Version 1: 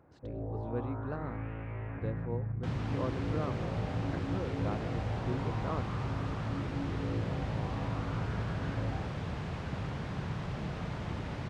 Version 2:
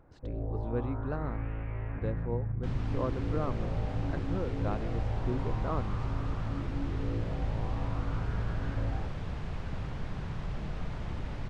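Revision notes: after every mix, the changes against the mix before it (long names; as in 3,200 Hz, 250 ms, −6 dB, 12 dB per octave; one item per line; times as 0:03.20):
speech +3.0 dB
second sound −3.0 dB
master: remove high-pass filter 89 Hz 12 dB per octave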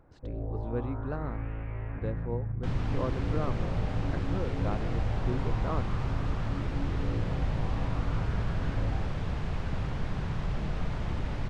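second sound +4.5 dB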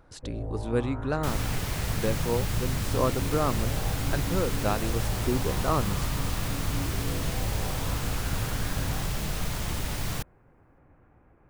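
speech +6.0 dB
second sound: entry −1.40 s
master: remove head-to-tape spacing loss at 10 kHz 32 dB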